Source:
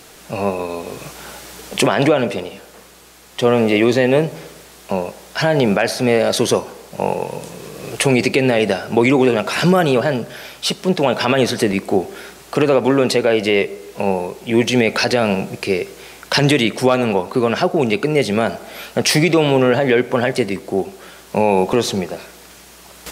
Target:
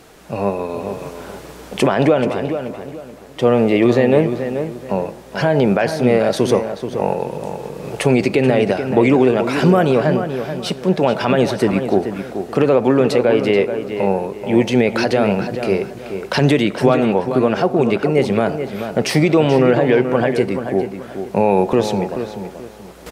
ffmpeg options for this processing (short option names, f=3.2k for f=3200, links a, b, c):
-filter_complex "[0:a]highshelf=f=2.1k:g=-10,asplit=2[a][b];[b]adelay=432,lowpass=f=3k:p=1,volume=-8.5dB,asplit=2[c][d];[d]adelay=432,lowpass=f=3k:p=1,volume=0.31,asplit=2[e][f];[f]adelay=432,lowpass=f=3k:p=1,volume=0.31,asplit=2[g][h];[h]adelay=432,lowpass=f=3k:p=1,volume=0.31[i];[c][e][g][i]amix=inputs=4:normalize=0[j];[a][j]amix=inputs=2:normalize=0,volume=1dB"